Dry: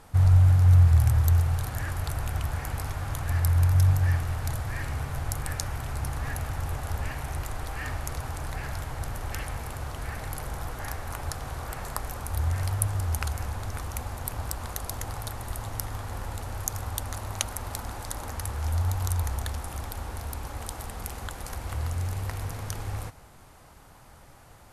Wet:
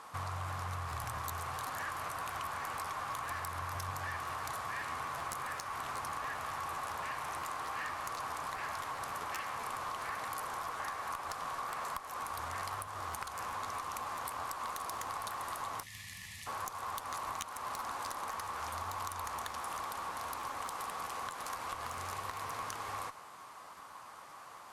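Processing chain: frequency weighting A; time-frequency box 15.83–16.47 s, 230–1700 Hz -28 dB; peaking EQ 1.1 kHz +13 dB 0.33 oct; compression 4:1, threshold -36 dBFS, peak gain reduction 13.5 dB; valve stage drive 29 dB, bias 0.3; crackling interface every 0.13 s, samples 512, repeat, from 0.89 s; trim +1 dB

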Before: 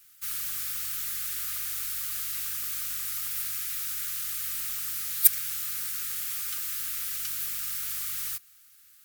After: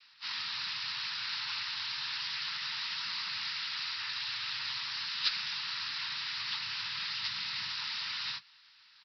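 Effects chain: partials quantised in pitch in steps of 6 st; 6.15–7.72 s: peaking EQ 130 Hz +10.5 dB 0.51 oct; noise-vocoded speech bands 12; Chebyshev shaper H 2 -31 dB, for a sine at -4.5 dBFS; resampled via 11.025 kHz; trim -3 dB

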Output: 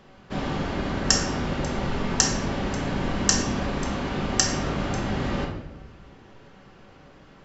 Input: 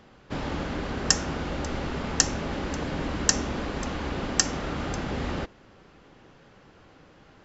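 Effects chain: simulated room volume 330 m³, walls mixed, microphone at 1.1 m

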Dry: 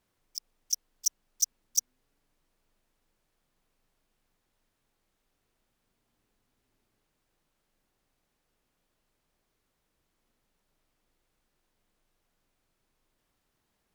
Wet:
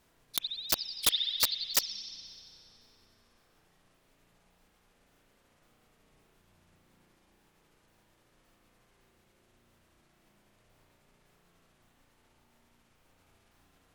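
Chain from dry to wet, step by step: sawtooth pitch modulation -9 st, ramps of 563 ms; spring tank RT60 2.3 s, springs 34 ms, chirp 60 ms, DRR -2 dB; integer overflow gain 24.5 dB; trim +9 dB

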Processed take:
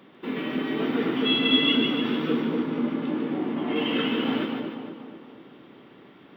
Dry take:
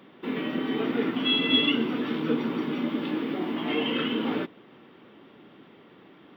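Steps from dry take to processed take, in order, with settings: 2.40–3.76 s: treble shelf 2.5 kHz -12 dB; two-band feedback delay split 1.2 kHz, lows 241 ms, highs 148 ms, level -4 dB

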